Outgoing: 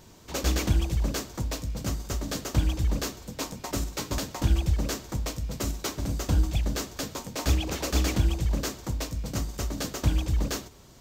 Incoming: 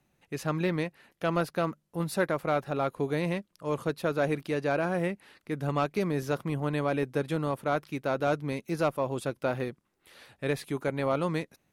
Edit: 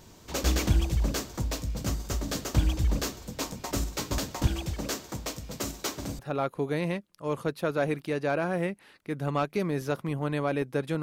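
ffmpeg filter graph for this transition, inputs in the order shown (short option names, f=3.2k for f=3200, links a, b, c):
-filter_complex "[0:a]asettb=1/sr,asplit=3[a][b][c];[a]atrim=end=4.474[d];[b]atrim=start=4.47:end=6.19,asetpts=PTS-STARTPTS,afade=t=in:d=0.004:c=qsin,afade=t=out:st=1.716:d=0.004:c=qsin,highpass=f=210:p=1[e];[c]atrim=start=6.186[f];[d][e]acrossfade=d=0.004:c1=hsin:c2=qsin[g];[g][f]acrossfade=d=0.004:c1=qsin:c2=hsin,apad=whole_dur=11.02,atrim=end=11.02,atrim=end=6.192[h];[1:a]atrim=start=2.598:end=7.43[i];[h][i]acrossfade=d=0.004:c1=hsin:c2=hsin"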